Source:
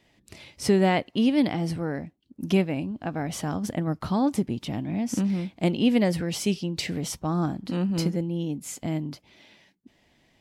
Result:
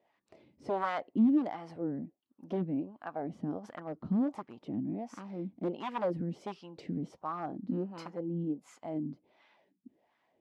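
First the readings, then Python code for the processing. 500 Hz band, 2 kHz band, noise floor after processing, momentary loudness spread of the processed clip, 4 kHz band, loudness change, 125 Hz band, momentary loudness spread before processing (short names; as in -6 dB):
-9.5 dB, -12.5 dB, -78 dBFS, 11 LU, -21.0 dB, -9.0 dB, -13.0 dB, 10 LU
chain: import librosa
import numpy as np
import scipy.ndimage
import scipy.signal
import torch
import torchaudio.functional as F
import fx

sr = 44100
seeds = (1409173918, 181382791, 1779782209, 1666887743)

y = fx.peak_eq(x, sr, hz=5300.0, db=2.0, octaves=1.5)
y = 10.0 ** (-18.0 / 20.0) * (np.abs((y / 10.0 ** (-18.0 / 20.0) + 3.0) % 4.0 - 2.0) - 1.0)
y = fx.wah_lfo(y, sr, hz=1.4, low_hz=220.0, high_hz=1200.0, q=2.6)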